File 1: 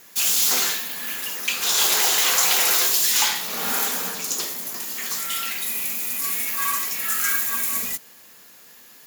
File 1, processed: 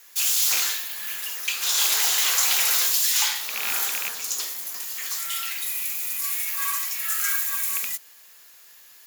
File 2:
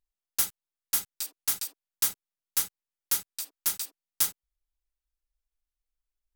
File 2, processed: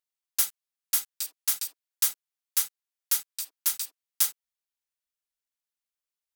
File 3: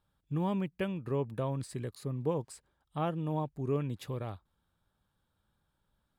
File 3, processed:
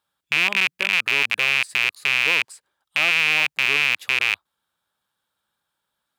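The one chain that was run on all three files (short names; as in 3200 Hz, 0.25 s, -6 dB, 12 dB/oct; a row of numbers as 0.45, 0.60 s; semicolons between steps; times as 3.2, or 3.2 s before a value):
rattling part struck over -40 dBFS, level -12 dBFS; HPF 1300 Hz 6 dB/oct; normalise peaks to -6 dBFS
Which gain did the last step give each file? -1.5, +1.5, +7.5 dB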